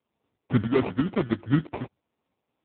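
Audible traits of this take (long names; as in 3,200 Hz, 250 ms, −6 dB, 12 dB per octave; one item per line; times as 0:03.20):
tremolo saw up 3 Hz, depth 65%
aliases and images of a low sample rate 1,600 Hz, jitter 0%
AMR narrowband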